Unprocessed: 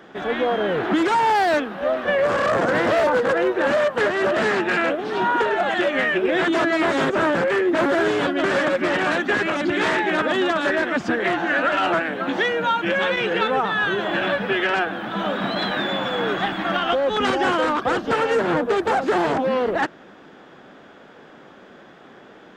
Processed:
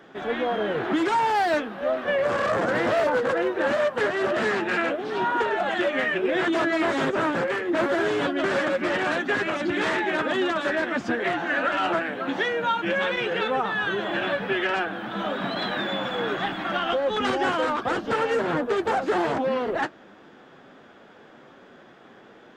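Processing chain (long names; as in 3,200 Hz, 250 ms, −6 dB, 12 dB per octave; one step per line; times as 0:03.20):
flanger 0.97 Hz, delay 7 ms, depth 2.7 ms, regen −52%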